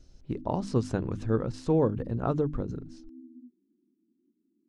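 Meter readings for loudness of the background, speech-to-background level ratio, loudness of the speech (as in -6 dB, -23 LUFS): -48.5 LUFS, 18.5 dB, -30.0 LUFS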